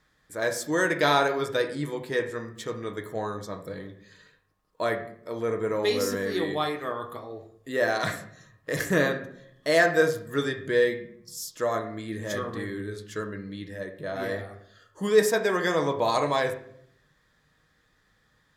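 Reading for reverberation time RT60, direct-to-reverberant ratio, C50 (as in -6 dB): 0.70 s, 4.0 dB, 10.5 dB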